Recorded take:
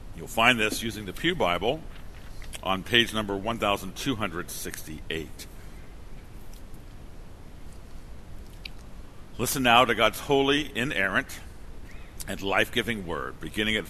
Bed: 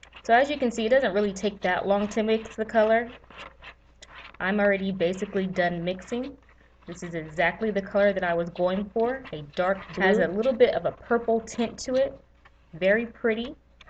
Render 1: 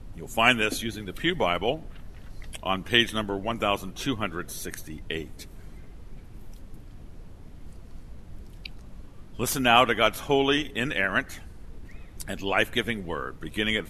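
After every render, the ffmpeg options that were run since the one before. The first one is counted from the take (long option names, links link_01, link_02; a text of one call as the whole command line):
ffmpeg -i in.wav -af "afftdn=noise_reduction=6:noise_floor=-45" out.wav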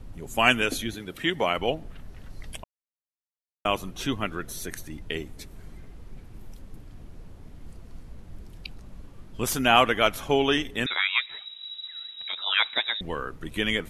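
ffmpeg -i in.wav -filter_complex "[0:a]asettb=1/sr,asplit=3[link_01][link_02][link_03];[link_01]atrim=end=0.944[link_04];[link_02]atrim=start=0.94:end=1.58,asetpts=PTS-STARTPTS,afade=type=in:duration=0.004:curve=qsin,afade=type=out:start_time=0.636:duration=0.004:curve=qsin,highpass=frequency=160:poles=1[link_05];[link_03]atrim=start=1.576[link_06];[link_04][link_05]acrossfade=duration=0.004:curve1=hsin:curve2=qsin[link_07];[link_07][link_06]acrossfade=duration=0.004:curve1=qsin:curve2=hsin,asettb=1/sr,asplit=3[link_08][link_09][link_10];[link_08]atrim=end=10.864[link_11];[link_09]atrim=start=10.86:end=13.01,asetpts=PTS-STARTPTS,afade=type=in:duration=0.004:curve=qsin,afade=type=out:start_time=2.146:duration=0.004:curve=qsin,lowpass=frequency=3300:width_type=q:width=0.5098,lowpass=frequency=3300:width_type=q:width=0.6013,lowpass=frequency=3300:width_type=q:width=0.9,lowpass=frequency=3300:width_type=q:width=2.563,afreqshift=-3900[link_12];[link_10]atrim=start=13.006[link_13];[link_11][link_12]acrossfade=duration=0.004:curve1=hsin:curve2=qsin[link_14];[link_14][link_13]acrossfade=duration=0.004:curve1=qsin:curve2=hsin,asplit=3[link_15][link_16][link_17];[link_15]atrim=end=2.64,asetpts=PTS-STARTPTS,afade=type=out:start_time=2.636:duration=0.004:curve=hsin[link_18];[link_16]atrim=start=2.64:end=3.65,asetpts=PTS-STARTPTS,volume=0[link_19];[link_17]atrim=start=3.65,asetpts=PTS-STARTPTS,afade=type=in:duration=0.004:curve=hsin[link_20];[link_18][link_19][link_20]concat=n=3:v=0:a=1" out.wav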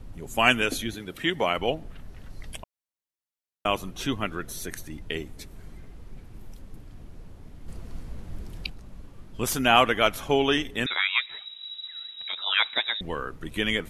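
ffmpeg -i in.wav -filter_complex "[0:a]asettb=1/sr,asplit=3[link_01][link_02][link_03];[link_01]atrim=end=7.684[link_04];[link_02]atrim=start=7.68:end=8.7,asetpts=PTS-STARTPTS,afade=type=in:duration=0.004:curve=qsin,afade=type=out:start_time=1.016:duration=0.004:curve=qsin,acontrast=38[link_05];[link_03]atrim=start=8.696[link_06];[link_04][link_05]acrossfade=duration=0.004:curve1=hsin:curve2=qsin[link_07];[link_07][link_06]acrossfade=duration=0.004:curve1=qsin:curve2=hsin" out.wav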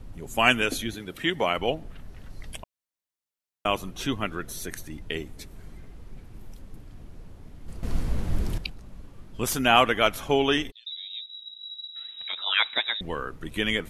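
ffmpeg -i in.wav -filter_complex "[0:a]asplit=3[link_01][link_02][link_03];[link_01]afade=type=out:start_time=10.7:duration=0.02[link_04];[link_02]asuperpass=centerf=4100:order=4:qfactor=5.6,afade=type=in:start_time=10.7:duration=0.02,afade=type=out:start_time=11.95:duration=0.02[link_05];[link_03]afade=type=in:start_time=11.95:duration=0.02[link_06];[link_04][link_05][link_06]amix=inputs=3:normalize=0,asplit=3[link_07][link_08][link_09];[link_07]atrim=end=7.832[link_10];[link_08]atrim=start=7.828:end=8.582,asetpts=PTS-STARTPTS,volume=11dB[link_11];[link_09]atrim=start=8.578[link_12];[link_10][link_11]acrossfade=duration=0.004:curve1=hsin:curve2=hsin[link_13];[link_13][link_12]acrossfade=duration=0.004:curve1=hsin:curve2=hsin" out.wav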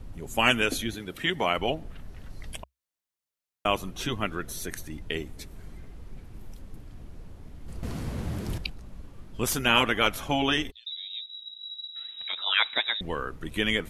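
ffmpeg -i in.wav -af "equalizer=frequency=66:width_type=o:width=0.32:gain=3.5,afftfilt=real='re*lt(hypot(re,im),0.562)':imag='im*lt(hypot(re,im),0.562)':win_size=1024:overlap=0.75" out.wav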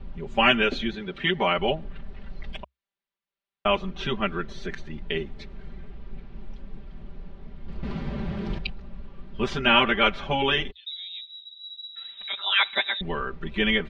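ffmpeg -i in.wav -af "lowpass=frequency=3900:width=0.5412,lowpass=frequency=3900:width=1.3066,aecho=1:1:5.1:1" out.wav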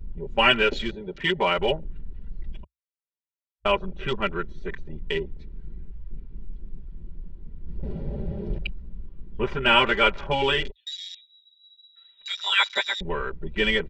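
ffmpeg -i in.wav -af "afwtdn=0.0158,aecho=1:1:2.1:0.44" out.wav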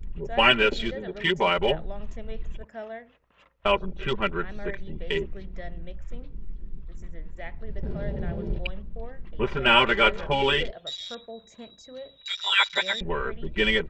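ffmpeg -i in.wav -i bed.wav -filter_complex "[1:a]volume=-17dB[link_01];[0:a][link_01]amix=inputs=2:normalize=0" out.wav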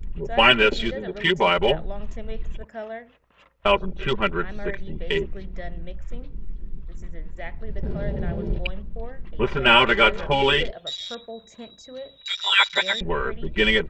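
ffmpeg -i in.wav -af "volume=3.5dB,alimiter=limit=-2dB:level=0:latency=1" out.wav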